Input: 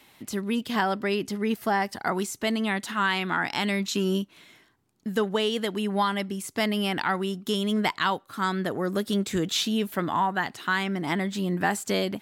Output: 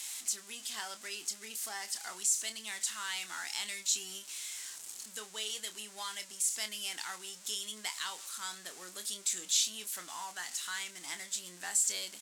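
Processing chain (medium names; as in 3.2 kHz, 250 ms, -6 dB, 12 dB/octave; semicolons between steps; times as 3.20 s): jump at every zero crossing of -32 dBFS; band-pass filter 7.7 kHz, Q 2.1; doubling 28 ms -9.5 dB; trim +4.5 dB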